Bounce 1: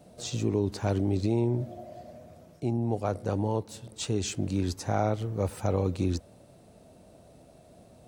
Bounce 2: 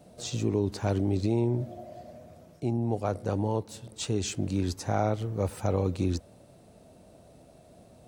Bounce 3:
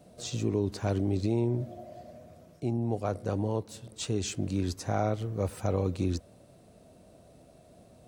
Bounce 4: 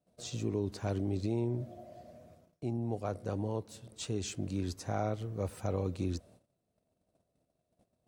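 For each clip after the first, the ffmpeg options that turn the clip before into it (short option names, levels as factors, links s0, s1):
-af anull
-af "bandreject=f=860:w=12,volume=0.841"
-af "agate=range=0.0891:threshold=0.00251:ratio=16:detection=peak,volume=0.562"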